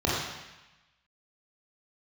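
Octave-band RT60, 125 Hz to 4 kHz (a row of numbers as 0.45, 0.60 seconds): 1.1, 1.0, 0.95, 1.1, 1.2, 1.1 seconds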